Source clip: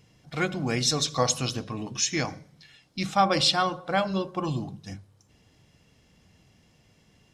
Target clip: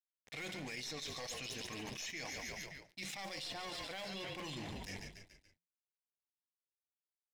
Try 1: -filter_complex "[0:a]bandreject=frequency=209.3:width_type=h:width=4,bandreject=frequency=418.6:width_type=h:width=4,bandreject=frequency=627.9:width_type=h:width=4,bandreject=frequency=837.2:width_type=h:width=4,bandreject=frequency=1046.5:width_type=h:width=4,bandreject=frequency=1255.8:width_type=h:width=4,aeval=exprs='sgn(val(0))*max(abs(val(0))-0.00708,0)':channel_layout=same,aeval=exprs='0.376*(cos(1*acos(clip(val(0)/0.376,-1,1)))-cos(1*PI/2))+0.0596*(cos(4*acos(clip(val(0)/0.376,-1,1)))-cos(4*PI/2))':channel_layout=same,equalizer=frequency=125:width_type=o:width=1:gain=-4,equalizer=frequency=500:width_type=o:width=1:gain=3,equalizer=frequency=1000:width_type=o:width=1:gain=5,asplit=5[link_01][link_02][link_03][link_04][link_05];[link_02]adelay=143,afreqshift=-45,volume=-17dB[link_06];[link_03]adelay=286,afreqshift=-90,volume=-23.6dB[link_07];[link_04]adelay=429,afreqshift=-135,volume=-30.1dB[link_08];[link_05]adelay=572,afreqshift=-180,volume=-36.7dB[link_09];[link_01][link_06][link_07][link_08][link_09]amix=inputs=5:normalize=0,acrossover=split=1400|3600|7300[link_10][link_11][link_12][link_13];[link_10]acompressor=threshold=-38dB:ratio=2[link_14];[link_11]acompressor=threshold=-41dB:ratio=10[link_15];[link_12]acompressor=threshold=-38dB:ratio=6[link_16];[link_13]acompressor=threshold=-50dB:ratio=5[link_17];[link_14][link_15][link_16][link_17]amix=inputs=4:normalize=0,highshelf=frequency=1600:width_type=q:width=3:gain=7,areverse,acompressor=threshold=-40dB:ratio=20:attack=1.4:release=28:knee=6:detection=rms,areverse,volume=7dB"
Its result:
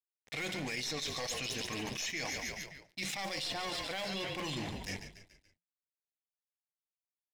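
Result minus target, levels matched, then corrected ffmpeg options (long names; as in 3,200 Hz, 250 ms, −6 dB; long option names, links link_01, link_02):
downward compressor: peak gain reduction −6.5 dB
-filter_complex "[0:a]bandreject=frequency=209.3:width_type=h:width=4,bandreject=frequency=418.6:width_type=h:width=4,bandreject=frequency=627.9:width_type=h:width=4,bandreject=frequency=837.2:width_type=h:width=4,bandreject=frequency=1046.5:width_type=h:width=4,bandreject=frequency=1255.8:width_type=h:width=4,aeval=exprs='sgn(val(0))*max(abs(val(0))-0.00708,0)':channel_layout=same,aeval=exprs='0.376*(cos(1*acos(clip(val(0)/0.376,-1,1)))-cos(1*PI/2))+0.0596*(cos(4*acos(clip(val(0)/0.376,-1,1)))-cos(4*PI/2))':channel_layout=same,equalizer=frequency=125:width_type=o:width=1:gain=-4,equalizer=frequency=500:width_type=o:width=1:gain=3,equalizer=frequency=1000:width_type=o:width=1:gain=5,asplit=5[link_01][link_02][link_03][link_04][link_05];[link_02]adelay=143,afreqshift=-45,volume=-17dB[link_06];[link_03]adelay=286,afreqshift=-90,volume=-23.6dB[link_07];[link_04]adelay=429,afreqshift=-135,volume=-30.1dB[link_08];[link_05]adelay=572,afreqshift=-180,volume=-36.7dB[link_09];[link_01][link_06][link_07][link_08][link_09]amix=inputs=5:normalize=0,acrossover=split=1400|3600|7300[link_10][link_11][link_12][link_13];[link_10]acompressor=threshold=-38dB:ratio=2[link_14];[link_11]acompressor=threshold=-41dB:ratio=10[link_15];[link_12]acompressor=threshold=-38dB:ratio=6[link_16];[link_13]acompressor=threshold=-50dB:ratio=5[link_17];[link_14][link_15][link_16][link_17]amix=inputs=4:normalize=0,highshelf=frequency=1600:width_type=q:width=3:gain=7,areverse,acompressor=threshold=-47dB:ratio=20:attack=1.4:release=28:knee=6:detection=rms,areverse,volume=7dB"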